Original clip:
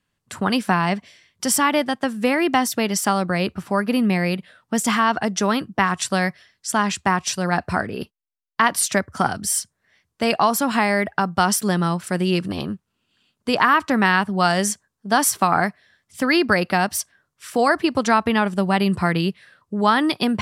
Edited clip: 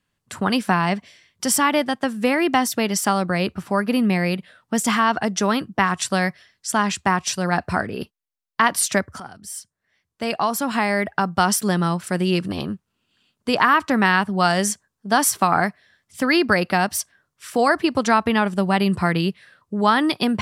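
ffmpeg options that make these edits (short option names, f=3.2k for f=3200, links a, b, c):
-filter_complex "[0:a]asplit=2[a][b];[a]atrim=end=9.2,asetpts=PTS-STARTPTS,afade=t=out:st=9.196:d=0.004:c=hsin:silence=0.11885[c];[b]atrim=start=9.2,asetpts=PTS-STARTPTS,afade=t=in:d=2.07:silence=0.11885[d];[c][d]concat=n=2:v=0:a=1"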